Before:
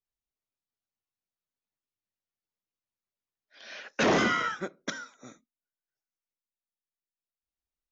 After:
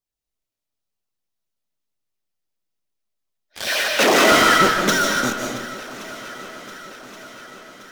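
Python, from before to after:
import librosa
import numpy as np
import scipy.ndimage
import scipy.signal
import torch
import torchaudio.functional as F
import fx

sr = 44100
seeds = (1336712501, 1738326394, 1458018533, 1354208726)

p1 = fx.filter_lfo_notch(x, sr, shape='saw_down', hz=8.6, low_hz=830.0, high_hz=2700.0, q=1.7)
p2 = fx.fuzz(p1, sr, gain_db=51.0, gate_db=-50.0)
p3 = p1 + (p2 * 10.0 ** (-9.0 / 20.0))
p4 = fx.bessel_highpass(p3, sr, hz=400.0, order=2, at=(3.68, 4.32))
p5 = p4 + fx.echo_swing(p4, sr, ms=1124, ratio=1.5, feedback_pct=54, wet_db=-18.0, dry=0)
p6 = fx.rev_freeverb(p5, sr, rt60_s=1.0, hf_ratio=0.75, predelay_ms=115, drr_db=0.5)
y = p6 * 10.0 ** (4.5 / 20.0)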